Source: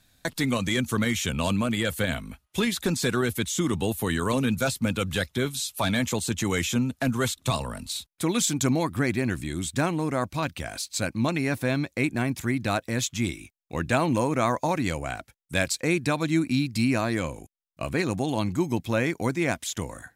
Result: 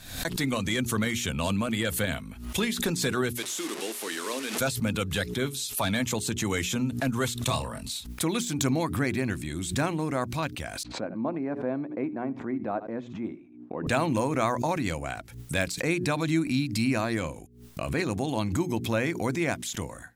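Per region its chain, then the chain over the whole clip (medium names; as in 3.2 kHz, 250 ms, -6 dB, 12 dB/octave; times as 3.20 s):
3.37–4.60 s: one-bit delta coder 64 kbps, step -26 dBFS + high-pass 320 Hz 24 dB/octave + peaking EQ 780 Hz -6 dB 1.9 oct
7.46–7.92 s: band-stop 1.4 kHz, Q 15 + short-mantissa float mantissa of 8-bit + doubling 26 ms -5.5 dB
10.83–13.87 s: Butterworth band-pass 470 Hz, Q 0.6 + delay 76 ms -22 dB
whole clip: de-esser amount 50%; hum notches 60/120/180/240/300/360/420 Hz; swell ahead of each attack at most 81 dB/s; trim -2 dB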